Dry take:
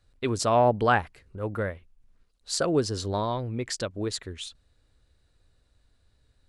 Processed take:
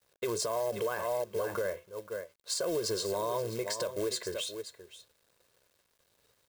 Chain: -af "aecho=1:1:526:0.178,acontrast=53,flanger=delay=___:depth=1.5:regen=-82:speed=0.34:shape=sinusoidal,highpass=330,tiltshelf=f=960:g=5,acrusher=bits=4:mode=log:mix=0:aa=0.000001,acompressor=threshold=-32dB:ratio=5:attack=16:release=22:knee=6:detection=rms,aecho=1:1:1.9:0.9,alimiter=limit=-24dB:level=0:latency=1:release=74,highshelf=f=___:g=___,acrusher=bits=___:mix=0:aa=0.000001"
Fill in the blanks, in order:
5.5, 8.8k, 7.5, 10